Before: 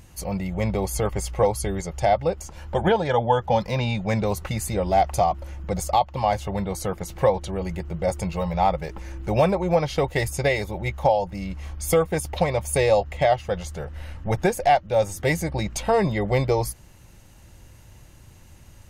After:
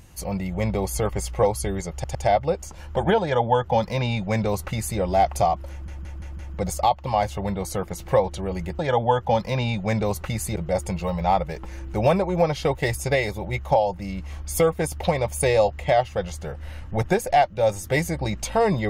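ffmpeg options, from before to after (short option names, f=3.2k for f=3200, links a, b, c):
-filter_complex "[0:a]asplit=9[a][b][c][d][e][f][g][h][i];[a]atrim=end=2.042[j];[b]atrim=start=1.928:end=2.042[k];[c]atrim=start=1.928:end=5.662[l];[d]atrim=start=5.488:end=5.662[m];[e]atrim=start=5.488:end=5.662[n];[f]atrim=start=5.488:end=5.662[o];[g]atrim=start=5.488:end=7.892[p];[h]atrim=start=2.998:end=4.772[q];[i]atrim=start=7.888[r];[j][k]acrossfade=d=0.004:c1=hsin:c2=hsin[s];[s][l]acrossfade=d=0.004:c1=hsin:c2=hsin[t];[t][m]acrossfade=d=0.004:c1=hsin:c2=hsin[u];[u][n]acrossfade=d=0.004:c1=hsin:c2=hsin[v];[v][o]acrossfade=d=0.004:c1=hsin:c2=hsin[w];[w][p]acrossfade=d=0.004:c1=hsin:c2=hsin[x];[x][q]acrossfade=d=0.004:c1=hsin:c2=hsin[y];[y][r]acrossfade=d=0.004:c1=hsin:c2=hsin"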